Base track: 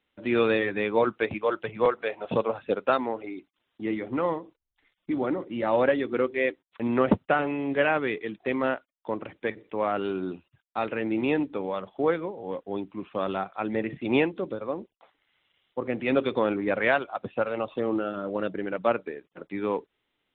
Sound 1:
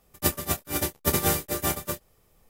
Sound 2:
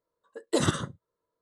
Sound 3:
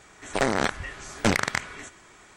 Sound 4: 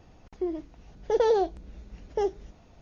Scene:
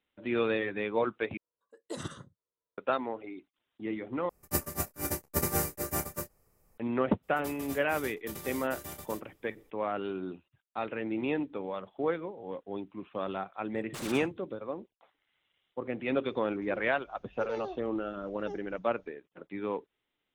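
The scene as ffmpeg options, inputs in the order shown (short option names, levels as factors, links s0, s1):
-filter_complex "[2:a]asplit=2[s0][s1];[1:a]asplit=2[s2][s3];[0:a]volume=0.501[s4];[s2]equalizer=f=3400:t=o:w=0.53:g=-14[s5];[s3]acompressor=threshold=0.0355:ratio=6:attack=0.58:release=91:knee=1:detection=rms[s6];[s1]aeval=exprs='0.0376*(abs(mod(val(0)/0.0376+3,4)-2)-1)':c=same[s7];[s4]asplit=3[s8][s9][s10];[s8]atrim=end=1.374[s11];[s0]atrim=end=1.41,asetpts=PTS-STARTPTS,volume=0.2[s12];[s9]atrim=start=2.776:end=4.294[s13];[s5]atrim=end=2.49,asetpts=PTS-STARTPTS,volume=0.531[s14];[s10]atrim=start=6.776[s15];[s6]atrim=end=2.49,asetpts=PTS-STARTPTS,volume=0.447,afade=t=in:d=0.02,afade=t=out:st=2.47:d=0.02,adelay=318402S[s16];[s7]atrim=end=1.41,asetpts=PTS-STARTPTS,volume=0.422,afade=t=in:d=0.004:c=hsin,afade=t=out:st=1.406:d=0.004:c=hsin,adelay=13410[s17];[4:a]atrim=end=2.81,asetpts=PTS-STARTPTS,volume=0.168,afade=t=in:d=0.004:c=hsin,afade=t=out:st=2.806:d=0.004:c=hsin,adelay=16290[s18];[s11][s12]acrossfade=d=0.004:c1=hsin:c2=hsin[s19];[s19][s13]acrossfade=d=0.004:c1=hsin:c2=hsin[s20];[s20][s14]acrossfade=d=0.004:c1=hsin:c2=hsin[s21];[s21][s15]acrossfade=d=0.004:c1=hsin:c2=hsin[s22];[s22][s16][s17][s18]amix=inputs=4:normalize=0"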